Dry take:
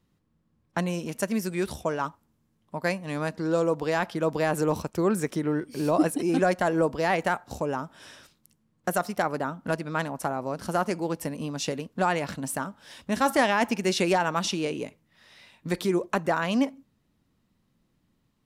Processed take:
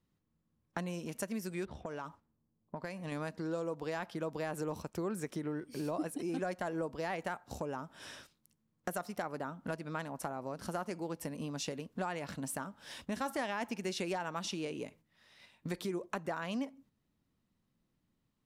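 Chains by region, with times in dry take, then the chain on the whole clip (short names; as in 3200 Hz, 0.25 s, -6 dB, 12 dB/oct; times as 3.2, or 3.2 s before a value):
1.65–3.12 low-pass opened by the level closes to 680 Hz, open at -27 dBFS + compressor 4:1, threshold -32 dBFS
whole clip: gate -51 dBFS, range -8 dB; compressor 2.5:1, threshold -39 dBFS; gain -1 dB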